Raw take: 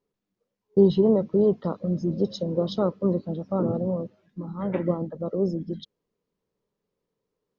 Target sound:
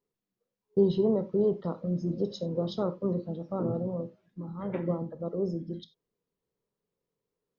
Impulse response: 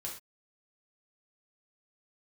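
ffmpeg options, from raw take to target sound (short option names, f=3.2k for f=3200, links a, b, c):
-filter_complex "[0:a]asplit=2[a][b];[1:a]atrim=start_sample=2205,atrim=end_sample=4410[c];[b][c]afir=irnorm=-1:irlink=0,volume=-5.5dB[d];[a][d]amix=inputs=2:normalize=0,volume=-8dB"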